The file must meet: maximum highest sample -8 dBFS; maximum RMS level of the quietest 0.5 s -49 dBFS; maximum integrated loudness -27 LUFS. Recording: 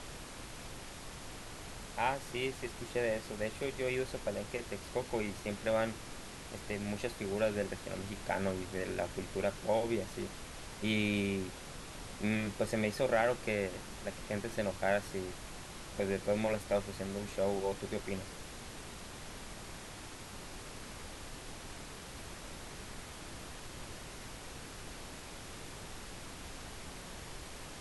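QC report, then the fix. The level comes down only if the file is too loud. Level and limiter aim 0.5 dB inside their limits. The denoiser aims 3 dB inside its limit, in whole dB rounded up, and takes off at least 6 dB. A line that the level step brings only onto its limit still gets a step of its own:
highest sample -18.5 dBFS: pass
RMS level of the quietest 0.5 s -48 dBFS: fail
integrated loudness -38.5 LUFS: pass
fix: noise reduction 6 dB, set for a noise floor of -48 dBFS

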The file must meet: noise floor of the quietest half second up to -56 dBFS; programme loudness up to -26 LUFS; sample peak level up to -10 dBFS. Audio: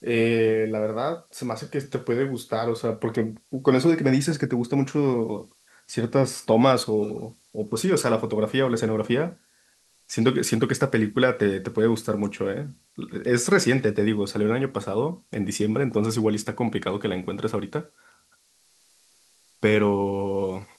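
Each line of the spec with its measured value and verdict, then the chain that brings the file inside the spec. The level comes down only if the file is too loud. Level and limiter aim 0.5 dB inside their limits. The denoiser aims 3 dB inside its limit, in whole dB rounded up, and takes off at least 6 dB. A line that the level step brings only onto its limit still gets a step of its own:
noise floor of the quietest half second -62 dBFS: pass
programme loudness -24.0 LUFS: fail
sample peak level -5.5 dBFS: fail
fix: trim -2.5 dB; peak limiter -10.5 dBFS

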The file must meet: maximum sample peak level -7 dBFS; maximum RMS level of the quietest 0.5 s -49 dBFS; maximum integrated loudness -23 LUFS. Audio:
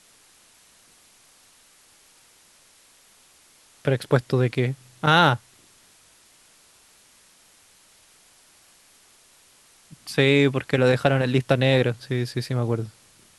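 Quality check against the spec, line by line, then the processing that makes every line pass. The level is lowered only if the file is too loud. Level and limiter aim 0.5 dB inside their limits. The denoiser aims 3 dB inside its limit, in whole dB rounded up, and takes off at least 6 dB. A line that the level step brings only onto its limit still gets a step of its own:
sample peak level -3.0 dBFS: fail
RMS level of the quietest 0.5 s -56 dBFS: pass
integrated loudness -22.0 LUFS: fail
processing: trim -1.5 dB; peak limiter -7.5 dBFS

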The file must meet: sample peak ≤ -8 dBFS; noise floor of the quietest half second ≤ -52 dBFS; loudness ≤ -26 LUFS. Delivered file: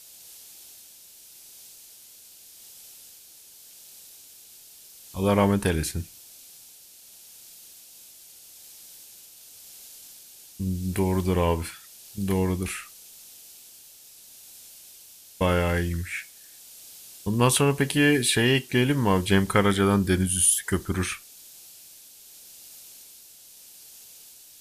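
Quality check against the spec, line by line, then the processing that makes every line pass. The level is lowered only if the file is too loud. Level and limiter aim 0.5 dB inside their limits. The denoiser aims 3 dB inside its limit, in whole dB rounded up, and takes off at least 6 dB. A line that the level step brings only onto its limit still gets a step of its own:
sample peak -6.0 dBFS: fail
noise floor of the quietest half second -50 dBFS: fail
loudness -24.0 LUFS: fail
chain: trim -2.5 dB

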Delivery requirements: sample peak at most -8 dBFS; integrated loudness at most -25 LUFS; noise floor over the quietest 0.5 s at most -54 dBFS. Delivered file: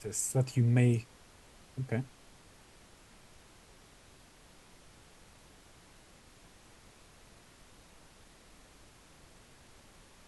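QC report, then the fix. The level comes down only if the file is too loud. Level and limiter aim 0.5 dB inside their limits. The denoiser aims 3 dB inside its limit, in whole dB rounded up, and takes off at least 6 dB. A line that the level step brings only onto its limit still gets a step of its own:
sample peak -14.0 dBFS: pass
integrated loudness -31.5 LUFS: pass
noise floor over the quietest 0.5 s -58 dBFS: pass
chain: none needed

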